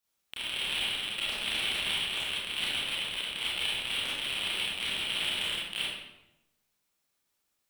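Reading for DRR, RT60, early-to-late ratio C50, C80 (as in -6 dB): -7.5 dB, 0.90 s, -2.0 dB, 2.5 dB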